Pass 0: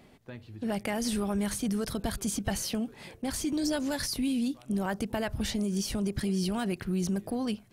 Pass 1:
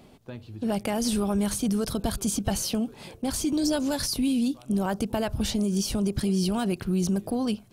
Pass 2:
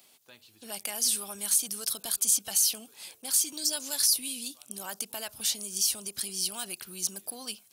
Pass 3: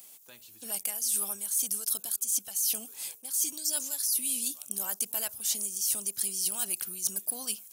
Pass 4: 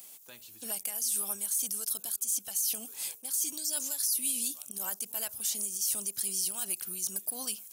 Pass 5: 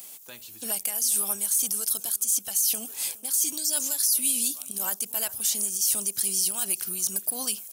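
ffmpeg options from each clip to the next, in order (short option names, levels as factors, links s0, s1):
-af "equalizer=f=1900:t=o:w=0.53:g=-8.5,volume=1.68"
-af "acontrast=84,aderivative"
-af "aexciter=amount=2.2:drive=7.9:freq=6000,areverse,acompressor=threshold=0.0501:ratio=12,areverse"
-af "alimiter=limit=0.0841:level=0:latency=1:release=105,volume=1.19"
-af "aecho=1:1:416:0.0891,volume=2.11"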